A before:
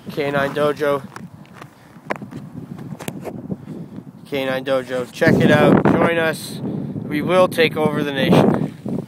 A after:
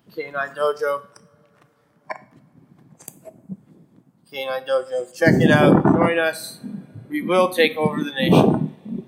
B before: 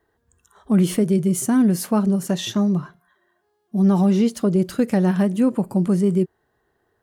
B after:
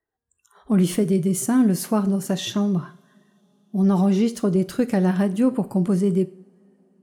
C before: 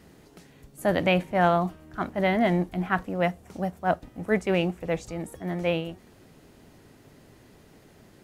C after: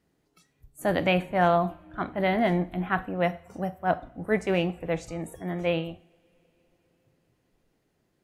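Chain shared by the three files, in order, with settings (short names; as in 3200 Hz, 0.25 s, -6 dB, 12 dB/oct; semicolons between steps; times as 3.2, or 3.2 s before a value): spectral noise reduction 18 dB; two-slope reverb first 0.48 s, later 4.8 s, from -28 dB, DRR 12.5 dB; gain -1 dB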